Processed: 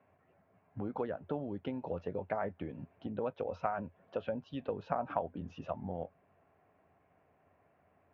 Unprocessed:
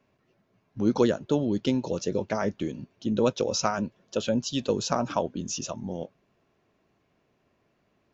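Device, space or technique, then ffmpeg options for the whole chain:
bass amplifier: -af "acompressor=threshold=-36dB:ratio=3,highpass=79,equalizer=frequency=86:width_type=q:width=4:gain=9,equalizer=frequency=120:width_type=q:width=4:gain=-7,equalizer=frequency=220:width_type=q:width=4:gain=-7,equalizer=frequency=350:width_type=q:width=4:gain=-7,equalizer=frequency=740:width_type=q:width=4:gain=7,lowpass=frequency=2200:width=0.5412,lowpass=frequency=2200:width=1.3066,volume=1dB"

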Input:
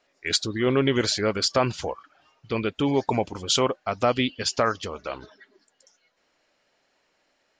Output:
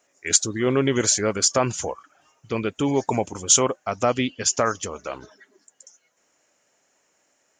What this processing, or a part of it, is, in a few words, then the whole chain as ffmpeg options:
budget condenser microphone: -filter_complex "[0:a]asettb=1/sr,asplit=3[link_01][link_02][link_03];[link_01]atrim=end=3.964[link_04];[link_02]atrim=start=3.96:end=4.59,asetpts=PTS-STARTPTS,afade=type=in:duration=0.004:curve=qsin,afade=type=out:start_time=0.626:duration=0.004:curve=qsin,lowpass=7400[link_05];[link_03]atrim=start=4.586[link_06];[link_04][link_05]acrossfade=duration=0.004:curve1=hsin:curve2=qsin[link_07];[link_07][link_06]acrossfade=duration=0.004:curve1=qsin:curve2=hsin,highpass=67,highshelf=frequency=5400:width_type=q:width=3:gain=7.5,volume=1dB"

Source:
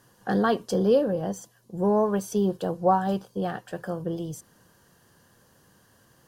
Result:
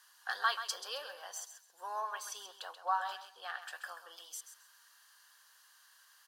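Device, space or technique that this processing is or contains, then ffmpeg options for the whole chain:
headphones lying on a table: -filter_complex "[0:a]asettb=1/sr,asplit=3[link_01][link_02][link_03];[link_01]atrim=end=2.004[link_04];[link_02]atrim=start=2:end=3.62,asetpts=PTS-STARTPTS,afade=type=in:duration=0.004:curve=qsin,afade=type=out:start_time=1.616:duration=0.004:curve=qsin,highshelf=frequency=5400:gain=-7.5[link_05];[link_03]atrim=start=3.616[link_06];[link_04][link_05]acrossfade=duration=0.004:curve1=hsin:curve2=qsin[link_07];[link_07][link_06]acrossfade=duration=0.004:curve1=qsin:curve2=hsin,highpass=frequency=1100:width=0.5412,highpass=frequency=1100:width=1.3066,equalizer=frequency=4100:width_type=o:width=0.59:gain=5,aecho=1:1:133|266|399:0.299|0.0627|0.0132,volume=-1dB"

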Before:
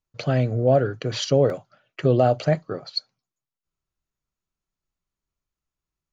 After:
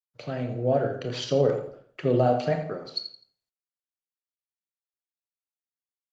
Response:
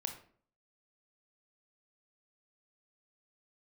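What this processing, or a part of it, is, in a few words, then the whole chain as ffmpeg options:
far-field microphone of a smart speaker: -filter_complex "[0:a]agate=range=-33dB:threshold=-50dB:ratio=3:detection=peak,asettb=1/sr,asplit=3[link_01][link_02][link_03];[link_01]atrim=end=2.284[link_04];[link_02]atrim=start=2.28:end=2.72,asetpts=PTS-STARTPTS,afade=type=in:duration=0.004:curve=qsin,afade=type=out:start_time=0.436:duration=0.004:curve=qsin,aecho=1:1:4.3:0.42,atrim=end_sample=19404[link_05];[link_03]atrim=start=2.716[link_06];[link_04][link_05]acrossfade=duration=0.004:curve1=hsin:curve2=qsin[link_07];[link_07][link_06]acrossfade=duration=0.004:curve1=qsin:curve2=hsin,aecho=1:1:84|168|252:0.224|0.0694|0.0215[link_08];[1:a]atrim=start_sample=2205[link_09];[link_08][link_09]afir=irnorm=-1:irlink=0,highpass=140,dynaudnorm=framelen=190:gausssize=7:maxgain=6.5dB,volume=-7.5dB" -ar 48000 -c:a libopus -b:a 24k

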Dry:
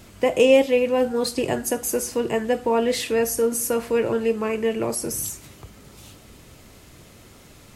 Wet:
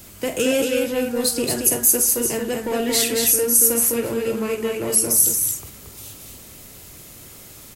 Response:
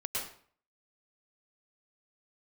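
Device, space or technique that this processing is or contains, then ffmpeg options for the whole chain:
one-band saturation: -filter_complex "[0:a]aemphasis=mode=production:type=50fm,asettb=1/sr,asplit=3[link_01][link_02][link_03];[link_01]atrim=end=2.714[link_04];[link_02]atrim=start=2.71:end=3.11,asetpts=PTS-STARTPTS,afade=type=in:duration=0.004:curve=qsin,afade=type=out:start_time=0.396:duration=0.004:curve=qsin,aecho=1:1:7.1:0.89,atrim=end_sample=17640[link_05];[link_03]atrim=start=3.106[link_06];[link_04][link_05]acrossfade=duration=0.004:curve1=hsin:curve2=qsin[link_07];[link_07][link_06]acrossfade=duration=0.004:curve1=qsin:curve2=hsin,acrossover=split=390|2700[link_08][link_09][link_10];[link_09]asoftclip=type=tanh:threshold=-27.5dB[link_11];[link_08][link_11][link_10]amix=inputs=3:normalize=0,aecho=1:1:46.65|227.4:0.316|0.631"

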